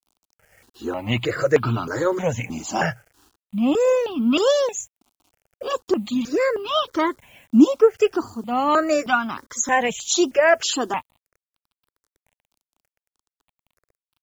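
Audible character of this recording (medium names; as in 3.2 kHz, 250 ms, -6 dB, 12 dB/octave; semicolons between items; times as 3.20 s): a quantiser's noise floor 10-bit, dither none; notches that jump at a steady rate 3.2 Hz 480–1900 Hz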